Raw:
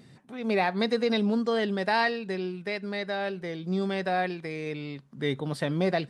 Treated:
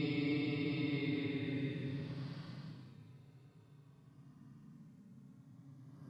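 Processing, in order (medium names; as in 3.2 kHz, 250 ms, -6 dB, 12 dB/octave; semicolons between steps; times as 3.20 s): pre-echo 68 ms -15 dB; Paulstretch 29×, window 0.05 s, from 4.91 s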